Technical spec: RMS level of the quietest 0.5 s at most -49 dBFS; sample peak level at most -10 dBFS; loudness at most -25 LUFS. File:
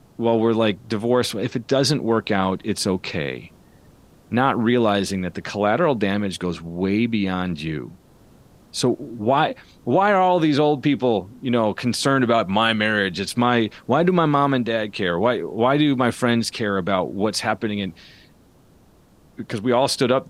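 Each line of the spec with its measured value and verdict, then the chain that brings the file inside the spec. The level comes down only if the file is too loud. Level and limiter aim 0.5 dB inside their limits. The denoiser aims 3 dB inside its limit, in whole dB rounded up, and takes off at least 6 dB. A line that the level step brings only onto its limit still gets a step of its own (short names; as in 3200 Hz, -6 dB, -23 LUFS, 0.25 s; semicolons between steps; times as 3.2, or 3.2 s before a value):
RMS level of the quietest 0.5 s -53 dBFS: OK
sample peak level -4.0 dBFS: fail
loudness -21.0 LUFS: fail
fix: gain -4.5 dB; limiter -10.5 dBFS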